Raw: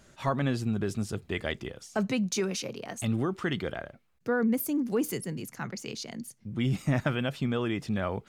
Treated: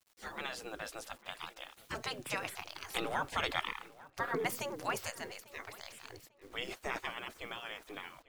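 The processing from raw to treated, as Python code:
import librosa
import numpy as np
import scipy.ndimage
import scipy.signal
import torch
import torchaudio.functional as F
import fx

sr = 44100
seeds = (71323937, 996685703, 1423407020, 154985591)

p1 = fx.doppler_pass(x, sr, speed_mps=9, closest_m=6.1, pass_at_s=3.79)
p2 = fx.spec_gate(p1, sr, threshold_db=-20, keep='weak')
p3 = fx.high_shelf(p2, sr, hz=2400.0, db=-6.0)
p4 = fx.rider(p3, sr, range_db=5, speed_s=2.0)
p5 = p3 + (p4 * librosa.db_to_amplitude(-2.0))
p6 = fx.quant_dither(p5, sr, seeds[0], bits=12, dither='none')
p7 = fx.echo_filtered(p6, sr, ms=846, feedback_pct=30, hz=3800.0, wet_db=-20)
y = p7 * librosa.db_to_amplitude(10.0)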